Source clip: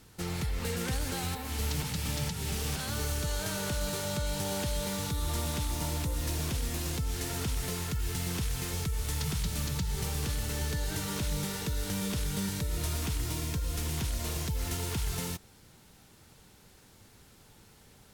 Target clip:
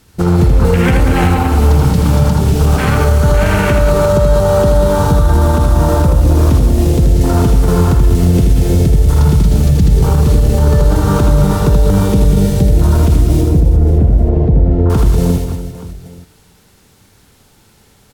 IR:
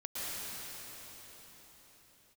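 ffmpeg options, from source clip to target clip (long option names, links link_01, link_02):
-filter_complex "[0:a]asettb=1/sr,asplit=3[link_01][link_02][link_03];[link_01]atrim=end=13.414[link_04];[link_02]atrim=start=13.41:end=14.9,asetpts=PTS-STARTPTS,afade=type=in:duration=0.004:curve=qsin,afade=type=out:start_time=1.486:duration=0.004:curve=qsin,lowpass=1100[link_05];[link_03]atrim=start=14.896[link_06];[link_04][link_05]acrossfade=duration=0.004:curve1=hsin:curve2=qsin[link_07];[link_07][link_06]acrossfade=duration=0.004:curve1=qsin:curve2=hsin,afwtdn=0.0112,aecho=1:1:80|192|348.8|568.3|875.6:0.631|0.398|0.251|0.158|0.1,asplit=2[link_08][link_09];[1:a]atrim=start_sample=2205,asetrate=79380,aresample=44100[link_10];[link_09][link_10]afir=irnorm=-1:irlink=0,volume=-28dB[link_11];[link_08][link_11]amix=inputs=2:normalize=0,alimiter=level_in=24dB:limit=-1dB:release=50:level=0:latency=1,volume=-1dB"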